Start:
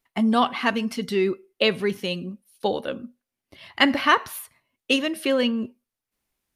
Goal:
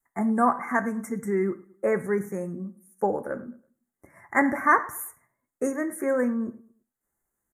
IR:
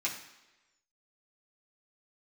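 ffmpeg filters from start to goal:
-filter_complex "[0:a]adynamicequalizer=threshold=0.0141:dfrequency=450:dqfactor=1.5:tfrequency=450:tqfactor=1.5:attack=5:release=100:ratio=0.375:range=2:mode=cutabove:tftype=bell,atempo=0.87,asuperstop=centerf=3600:order=12:qfactor=0.8,asplit=2[s0][s1];[s1]adelay=109,lowpass=f=2400:p=1,volume=0.1,asplit=2[s2][s3];[s3]adelay=109,lowpass=f=2400:p=1,volume=0.37,asplit=2[s4][s5];[s5]adelay=109,lowpass=f=2400:p=1,volume=0.37[s6];[s0][s2][s4][s6]amix=inputs=4:normalize=0,asplit=2[s7][s8];[1:a]atrim=start_sample=2205,atrim=end_sample=4410[s9];[s8][s9]afir=irnorm=-1:irlink=0,volume=0.282[s10];[s7][s10]amix=inputs=2:normalize=0,volume=0.841"

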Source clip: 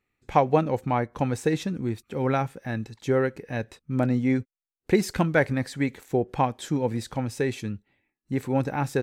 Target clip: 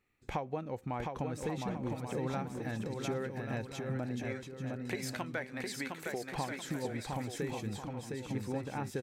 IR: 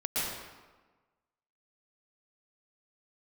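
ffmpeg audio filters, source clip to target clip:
-filter_complex "[0:a]asettb=1/sr,asplit=3[s0][s1][s2];[s0]atrim=end=4.244[s3];[s1]atrim=start=4.24:end=6.35,asetpts=PTS-STARTPTS,afade=t=in:d=0.004:c=qsin,afade=t=out:st=2.106:d=0.004:c=qsin,highpass=f=960:p=1[s4];[s2]atrim=start=6.346[s5];[s3][s4]acrossfade=d=0.004:c1=hsin:c2=qsin[s6];[s6][s5]acrossfade=d=0.004:c1=qsin:c2=hsin,acompressor=threshold=0.0141:ratio=4,aecho=1:1:710|1136|1392|1545|1637:0.631|0.398|0.251|0.158|0.1"

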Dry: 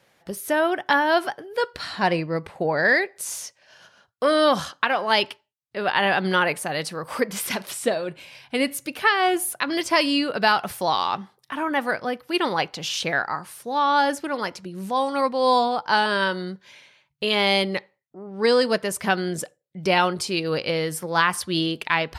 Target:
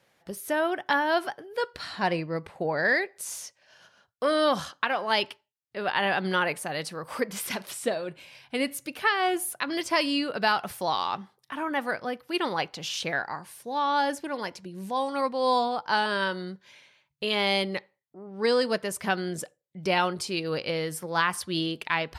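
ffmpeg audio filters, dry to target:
-filter_complex "[0:a]asettb=1/sr,asplit=3[s0][s1][s2];[s0]atrim=end=13.164[s3];[s1]atrim=start=13.16:end=15.09,asetpts=PTS-STARTPTS,afade=t=in:d=0.004:c=qsin,afade=t=out:st=1.926:d=0.004:c=qsin,bandreject=f=1300:w=6.3[s4];[s2]atrim=start=15.086[s5];[s3][s4]acrossfade=d=0.004:c1=hsin:c2=qsin[s6];[s6][s5]acrossfade=d=0.004:c1=qsin:c2=hsin,volume=0.562"

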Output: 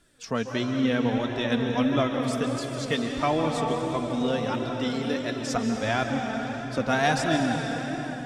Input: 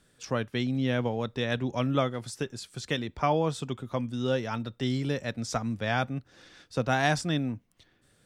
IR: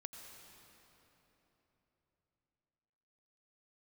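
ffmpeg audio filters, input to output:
-filter_complex "[0:a]asettb=1/sr,asplit=3[s0][s1][s2];[s0]atrim=end=4.714[s3];[s1]atrim=start=4.71:end=5.47,asetpts=PTS-STARTPTS,afade=t=in:d=0.004:c=qsin,afade=t=out:st=0.756:d=0.004:c=qsin,highpass=f=250:w=0.5412,highpass=f=250:w=1.3066[s4];[s2]atrim=start=5.466[s5];[s3][s4]acrossfade=d=0.004:c1=hsin:c2=qsin[s6];[s6][s5]acrossfade=d=0.004:c1=qsin:c2=hsin[s7];[1:a]atrim=start_sample=2205,asetrate=26460,aresample=44100[s8];[s7][s8]afir=irnorm=-1:irlink=0,flanger=delay=2.9:depth=1.6:regen=30:speed=1.5:shape=sinusoidal,volume=2.66"

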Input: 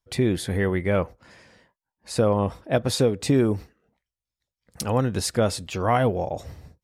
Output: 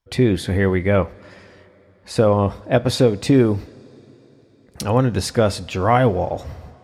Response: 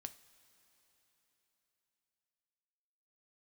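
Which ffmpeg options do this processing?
-filter_complex "[0:a]asplit=2[s0][s1];[1:a]atrim=start_sample=2205,lowpass=5600[s2];[s1][s2]afir=irnorm=-1:irlink=0,volume=1.5[s3];[s0][s3]amix=inputs=2:normalize=0"

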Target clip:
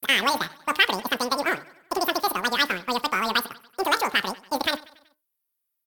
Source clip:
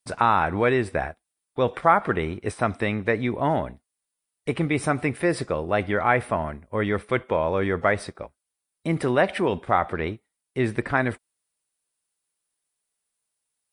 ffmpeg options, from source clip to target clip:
-filter_complex "[0:a]bandreject=f=64.59:t=h:w=4,bandreject=f=129.18:t=h:w=4,bandreject=f=193.77:t=h:w=4,bandreject=f=258.36:t=h:w=4,bandreject=f=322.95:t=h:w=4,bandreject=f=387.54:t=h:w=4,bandreject=f=452.13:t=h:w=4,bandreject=f=516.72:t=h:w=4,bandreject=f=581.31:t=h:w=4,bandreject=f=645.9:t=h:w=4,bandreject=f=710.49:t=h:w=4,bandreject=f=775.08:t=h:w=4,bandreject=f=839.67:t=h:w=4,bandreject=f=904.26:t=h:w=4,asplit=2[s0][s1];[s1]aeval=exprs='sgn(val(0))*max(abs(val(0))-0.0188,0)':c=same,volume=0.708[s2];[s0][s2]amix=inputs=2:normalize=0,aexciter=amount=6.9:drive=5.3:freq=4500,asplit=2[s3][s4];[s4]aecho=0:1:221|442|663|884:0.0841|0.0454|0.0245|0.0132[s5];[s3][s5]amix=inputs=2:normalize=0,aresample=16000,aresample=44100,asetrate=103194,aresample=44100,volume=0.596"

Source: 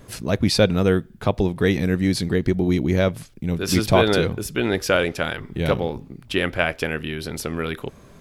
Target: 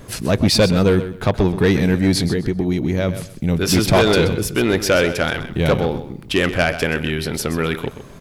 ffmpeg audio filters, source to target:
-filter_complex "[0:a]asettb=1/sr,asplit=3[s0][s1][s2];[s0]atrim=end=2.264[s3];[s1]atrim=start=2.26:end=3.09,asetpts=PTS-STARTPTS,afade=t=in:d=0.004:c=qsin,afade=t=out:st=0.826:d=0.004:c=qsin,acompressor=threshold=0.0794:ratio=6[s4];[s2]atrim=start=3.086[s5];[s3][s4]acrossfade=d=0.004:c1=hsin:c2=qsin[s6];[s6][s5]acrossfade=d=0.004:c1=qsin:c2=hsin,asoftclip=type=tanh:threshold=0.188,aecho=1:1:128|256|384:0.251|0.0553|0.0122,volume=2.11"

